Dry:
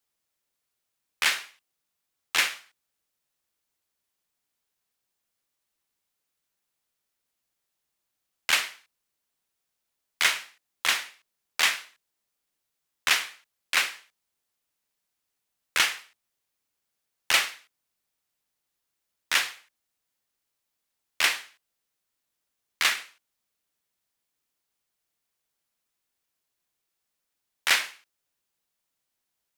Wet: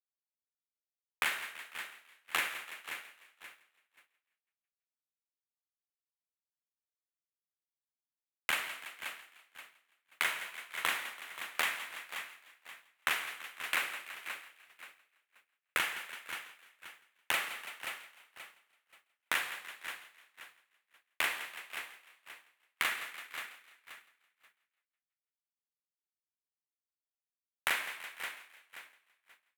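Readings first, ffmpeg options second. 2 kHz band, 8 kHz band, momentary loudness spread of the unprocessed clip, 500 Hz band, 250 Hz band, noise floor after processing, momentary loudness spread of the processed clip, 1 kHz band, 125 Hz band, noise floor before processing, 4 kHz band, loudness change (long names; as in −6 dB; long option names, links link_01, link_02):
−7.0 dB, −12.0 dB, 12 LU, −4.5 dB, −4.0 dB, below −85 dBFS, 20 LU, −5.0 dB, can't be measured, −82 dBFS, −11.5 dB, −11.0 dB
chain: -filter_complex "[0:a]acontrast=57,highpass=79,asplit=2[link_01][link_02];[link_02]aecho=0:1:529|1058|1587:0.119|0.0416|0.0146[link_03];[link_01][link_03]amix=inputs=2:normalize=0,agate=range=-33dB:threshold=-47dB:ratio=3:detection=peak,asplit=2[link_04][link_05];[link_05]asplit=5[link_06][link_07][link_08][link_09][link_10];[link_06]adelay=166,afreqshift=33,volume=-18.5dB[link_11];[link_07]adelay=332,afreqshift=66,volume=-23.7dB[link_12];[link_08]adelay=498,afreqshift=99,volume=-28.9dB[link_13];[link_09]adelay=664,afreqshift=132,volume=-34.1dB[link_14];[link_10]adelay=830,afreqshift=165,volume=-39.3dB[link_15];[link_11][link_12][link_13][link_14][link_15]amix=inputs=5:normalize=0[link_16];[link_04][link_16]amix=inputs=2:normalize=0,acompressor=threshold=-23dB:ratio=6,equalizer=frequency=5200:width=1.1:gain=-14.5,volume=-2.5dB"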